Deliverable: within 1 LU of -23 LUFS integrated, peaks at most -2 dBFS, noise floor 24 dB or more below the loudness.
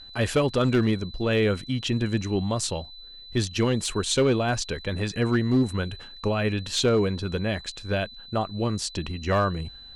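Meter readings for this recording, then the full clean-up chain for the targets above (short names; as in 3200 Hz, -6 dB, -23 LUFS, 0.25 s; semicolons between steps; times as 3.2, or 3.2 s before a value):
clipped 0.7%; flat tops at -15.0 dBFS; steady tone 4000 Hz; tone level -43 dBFS; loudness -26.0 LUFS; peak -15.0 dBFS; loudness target -23.0 LUFS
-> clip repair -15 dBFS; notch 4000 Hz, Q 30; gain +3 dB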